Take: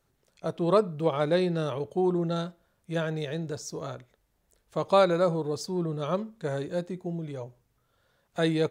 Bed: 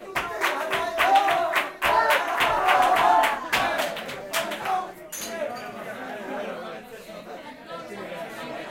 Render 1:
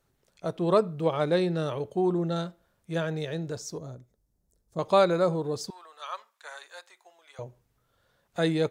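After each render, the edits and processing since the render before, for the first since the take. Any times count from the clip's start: 3.78–4.79 EQ curve 200 Hz 0 dB, 2900 Hz -21 dB, 5400 Hz -6 dB; 5.7–7.39 HPF 910 Hz 24 dB/oct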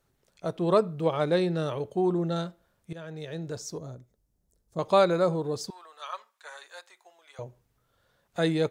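2.93–3.61 fade in, from -17.5 dB; 6.08–6.65 notch comb 170 Hz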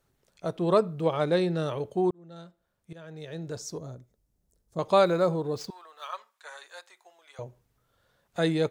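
2.11–3.62 fade in; 5.05–6.15 median filter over 5 samples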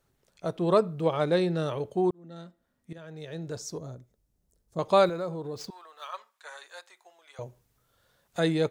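2.24–2.98 small resonant body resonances 250/1900 Hz, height 16 dB, ringing for 90 ms; 5.09–6.14 compressor 2:1, threshold -36 dBFS; 7.41–8.4 high shelf 3800 Hz +6.5 dB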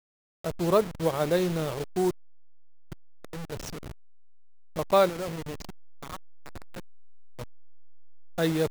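level-crossing sampler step -31 dBFS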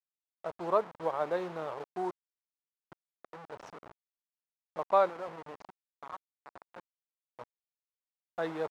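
band-pass 940 Hz, Q 1.5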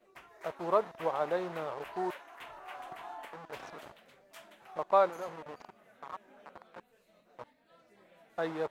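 add bed -26.5 dB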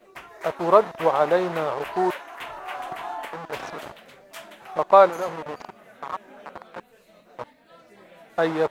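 gain +12 dB; limiter -2 dBFS, peak gain reduction 1 dB

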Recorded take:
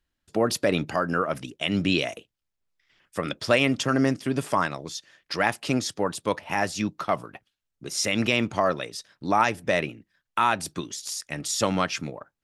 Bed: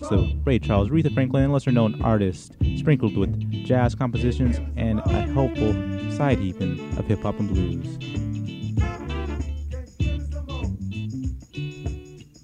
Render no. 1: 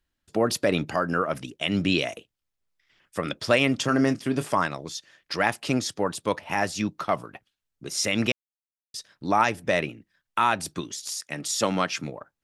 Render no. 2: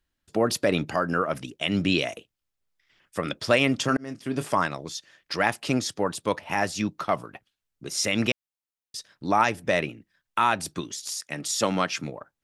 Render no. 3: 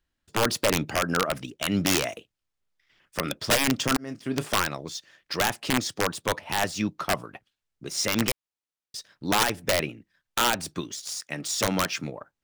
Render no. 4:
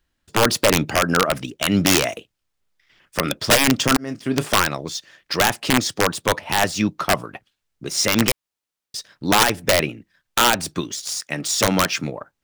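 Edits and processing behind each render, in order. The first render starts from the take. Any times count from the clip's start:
3.8–4.49 doubler 27 ms -12.5 dB; 8.32–8.94 mute; 11.2–12.04 HPF 140 Hz
3.97–4.47 fade in
median filter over 3 samples; wrapped overs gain 14 dB
gain +7 dB

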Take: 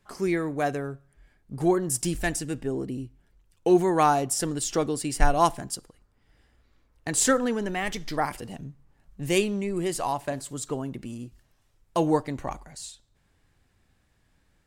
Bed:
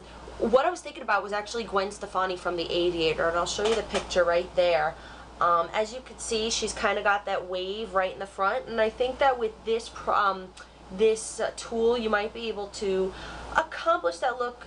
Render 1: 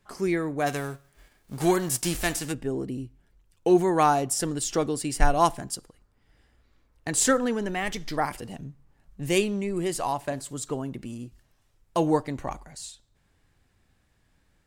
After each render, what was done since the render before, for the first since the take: 0.66–2.51 spectral whitening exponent 0.6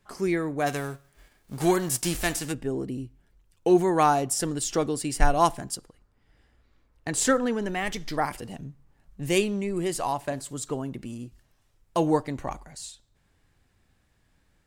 5.77–7.62 high shelf 5500 Hz -4.5 dB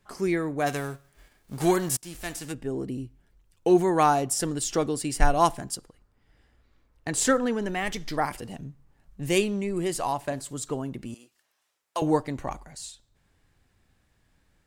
1.97–2.88 fade in, from -20.5 dB; 11.14–12.02 Bessel high-pass 820 Hz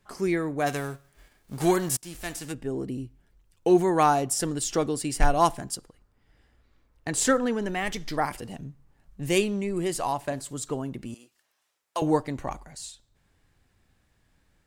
overloaded stage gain 10 dB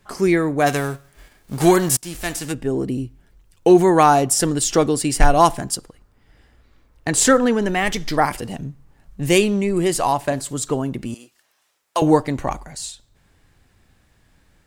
gain +9 dB; limiter -3 dBFS, peak gain reduction 2 dB

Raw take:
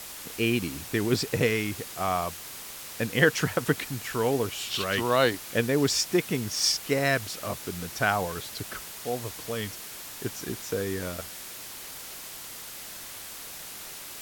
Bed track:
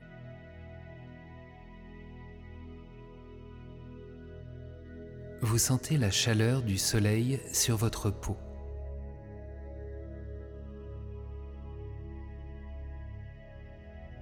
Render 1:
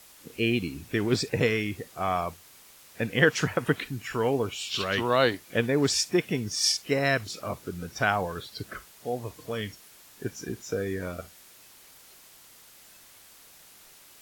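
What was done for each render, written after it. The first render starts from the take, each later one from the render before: noise print and reduce 12 dB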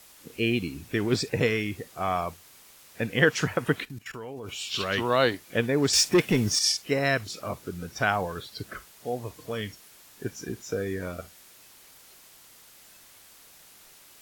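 3.85–4.49 level quantiser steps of 19 dB; 5.93–6.59 sample leveller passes 2; 8.14–9.14 companded quantiser 8-bit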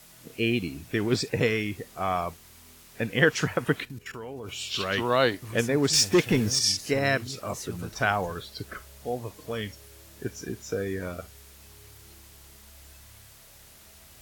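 add bed track -11.5 dB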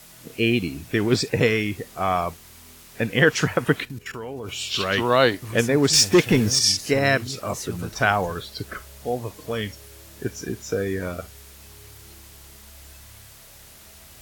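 gain +5 dB; limiter -3 dBFS, peak gain reduction 2.5 dB

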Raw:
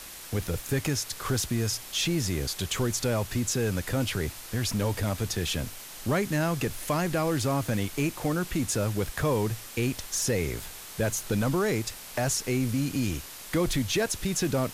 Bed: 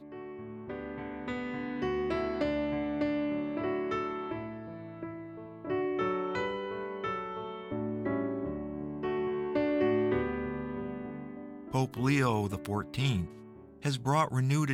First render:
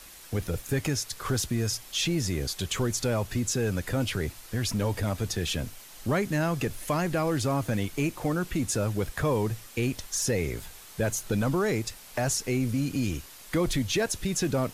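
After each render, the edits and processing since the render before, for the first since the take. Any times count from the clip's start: denoiser 6 dB, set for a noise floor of -43 dBFS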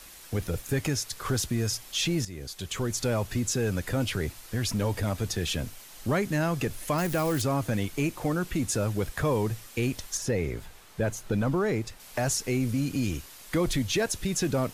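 2.25–3.08 fade in, from -13.5 dB; 6.98–7.42 switching spikes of -27.5 dBFS; 10.17–12 high shelf 3500 Hz -9.5 dB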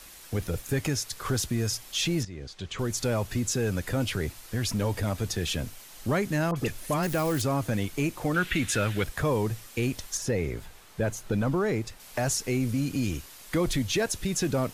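2.23–2.79 air absorption 110 m; 6.51–7.07 dispersion highs, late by 50 ms, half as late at 1700 Hz; 8.34–9.04 band shelf 2300 Hz +11.5 dB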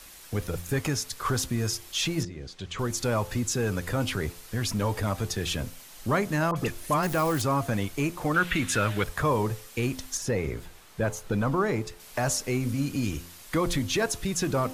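de-hum 86.58 Hz, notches 10; dynamic EQ 1100 Hz, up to +7 dB, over -46 dBFS, Q 1.8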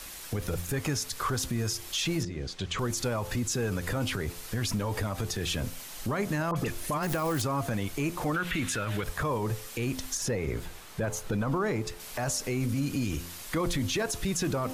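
in parallel at -2 dB: compressor, threshold -35 dBFS, peak gain reduction 15 dB; on the sum: limiter -21.5 dBFS, peak gain reduction 11 dB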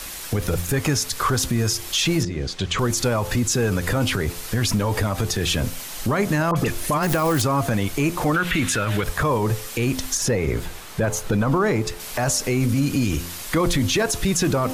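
gain +9 dB

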